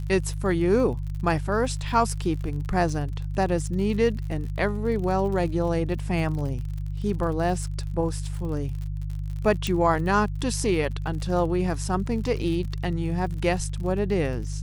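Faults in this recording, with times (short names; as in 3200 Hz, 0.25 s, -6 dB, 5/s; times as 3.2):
crackle 51/s -34 dBFS
hum 50 Hz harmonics 3 -30 dBFS
9.67 pop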